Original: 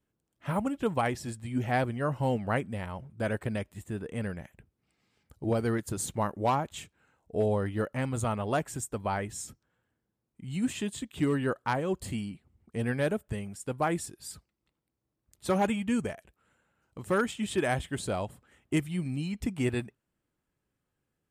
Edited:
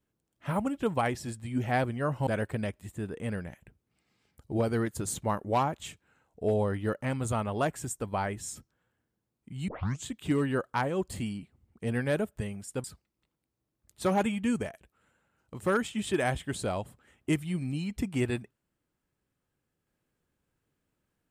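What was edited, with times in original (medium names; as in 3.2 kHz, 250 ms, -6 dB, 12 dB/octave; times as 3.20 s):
2.27–3.19 s: delete
10.60 s: tape start 0.38 s
13.76–14.28 s: delete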